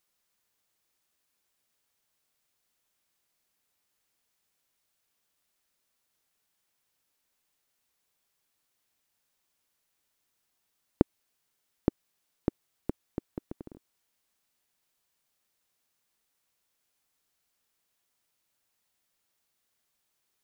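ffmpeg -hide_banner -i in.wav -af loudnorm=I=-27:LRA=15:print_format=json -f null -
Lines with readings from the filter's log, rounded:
"input_i" : "-36.1",
"input_tp" : "-4.6",
"input_lra" : "12.8",
"input_thresh" : "-46.8",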